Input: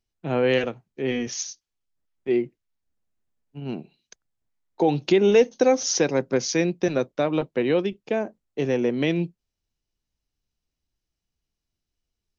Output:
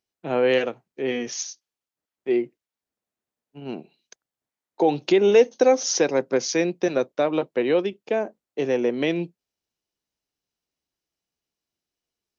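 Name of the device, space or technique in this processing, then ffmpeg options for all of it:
filter by subtraction: -filter_complex "[0:a]asplit=2[a][b];[b]lowpass=480,volume=-1[c];[a][c]amix=inputs=2:normalize=0"

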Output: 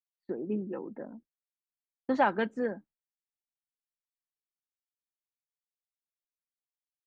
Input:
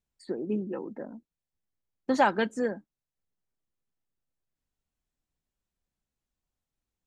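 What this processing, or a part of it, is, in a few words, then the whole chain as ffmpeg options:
hearing-loss simulation: -af "lowpass=2.9k,agate=range=-33dB:threshold=-49dB:ratio=3:detection=peak,volume=-2.5dB"

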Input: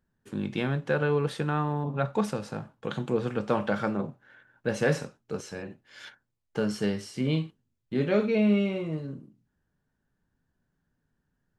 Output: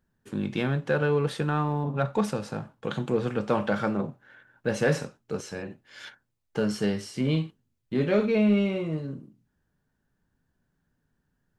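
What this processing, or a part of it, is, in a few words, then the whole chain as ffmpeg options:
parallel distortion: -filter_complex "[0:a]asplit=2[a][b];[b]asoftclip=type=hard:threshold=-26dB,volume=-11dB[c];[a][c]amix=inputs=2:normalize=0"

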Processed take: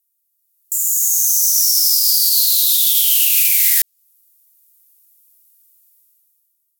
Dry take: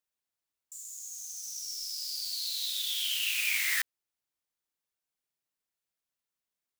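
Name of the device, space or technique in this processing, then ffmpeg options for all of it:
FM broadcast chain: -filter_complex "[0:a]highpass=44,dynaudnorm=f=120:g=13:m=16dB,acrossover=split=1400|7100[a][b][c];[a]acompressor=threshold=-44dB:ratio=4[d];[b]acompressor=threshold=-19dB:ratio=4[e];[c]acompressor=threshold=-34dB:ratio=4[f];[d][e][f]amix=inputs=3:normalize=0,aemphasis=mode=production:type=75fm,alimiter=limit=-4dB:level=0:latency=1:release=41,asoftclip=type=hard:threshold=-6dB,lowpass=f=15k:w=0.5412,lowpass=f=15k:w=1.3066,aemphasis=mode=production:type=75fm,volume=-10dB"

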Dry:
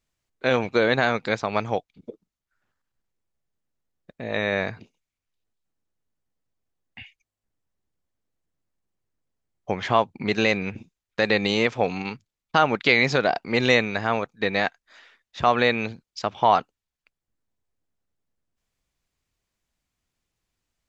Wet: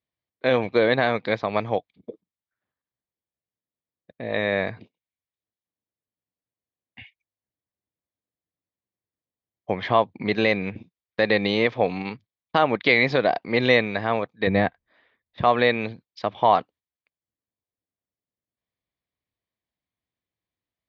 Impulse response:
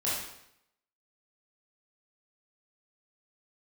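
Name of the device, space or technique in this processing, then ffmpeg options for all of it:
guitar cabinet: -filter_complex "[0:a]asettb=1/sr,asplit=3[a][b][c];[a]atrim=end=14.474[d];[b]atrim=start=14.47:end=15.41,asetpts=PTS-STARTPTS,afade=t=in:d=0.004:c=qsin,afade=t=out:st=0.936:d=0.004:c=qsin,aemphasis=mode=reproduction:type=riaa[e];[c]atrim=start=15.406[f];[d][e]acrossfade=d=0.004:c1=hsin:c2=qsin[g];[g][f]acrossfade=d=0.004:c1=qsin:c2=hsin,agate=range=-8dB:threshold=-46dB:ratio=16:detection=peak,highpass=100,equalizer=f=150:t=q:w=4:g=-5,equalizer=f=230:t=q:w=4:g=-3,equalizer=f=390:t=q:w=4:g=-3,equalizer=f=850:t=q:w=4:g=-4,equalizer=f=1.4k:t=q:w=4:g=-9,equalizer=f=2.7k:t=q:w=4:g=-7,lowpass=f=3.8k:w=0.5412,lowpass=f=3.8k:w=1.3066,volume=3dB"

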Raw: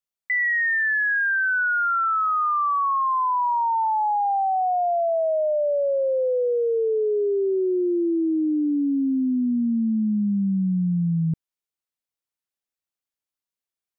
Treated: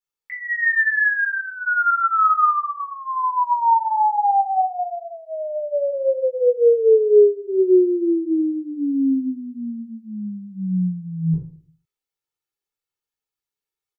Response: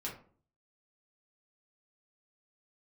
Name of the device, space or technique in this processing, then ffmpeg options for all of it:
microphone above a desk: -filter_complex "[0:a]aecho=1:1:2.3:0.73[a];[1:a]atrim=start_sample=2205[b];[a][b]afir=irnorm=-1:irlink=0"

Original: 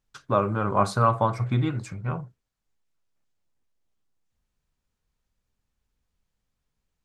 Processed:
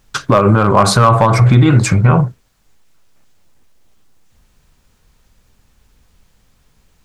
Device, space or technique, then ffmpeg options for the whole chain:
loud club master: -af "acompressor=threshold=-23dB:ratio=2,asoftclip=type=hard:threshold=-17dB,alimiter=level_in=25.5dB:limit=-1dB:release=50:level=0:latency=1,volume=-1dB"

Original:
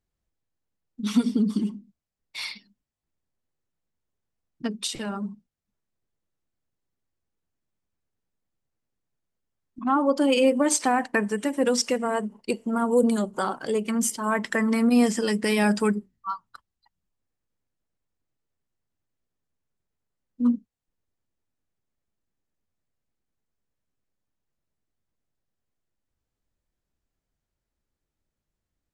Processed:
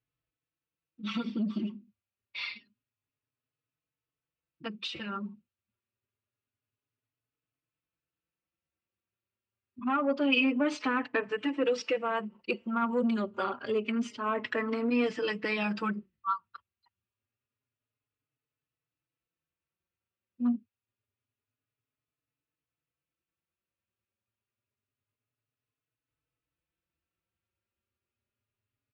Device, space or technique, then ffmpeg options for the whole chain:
barber-pole flanger into a guitar amplifier: -filter_complex "[0:a]asplit=2[a][b];[b]adelay=4.2,afreqshift=0.27[c];[a][c]amix=inputs=2:normalize=1,asoftclip=type=tanh:threshold=-16.5dB,highpass=89,equalizer=f=110:t=q:w=4:g=8,equalizer=f=190:t=q:w=4:g=-7,equalizer=f=760:t=q:w=4:g=-6,equalizer=f=1.3k:t=q:w=4:g=5,equalizer=f=2.6k:t=q:w=4:g=9,lowpass=f=4.1k:w=0.5412,lowpass=f=4.1k:w=1.3066,volume=-1.5dB"

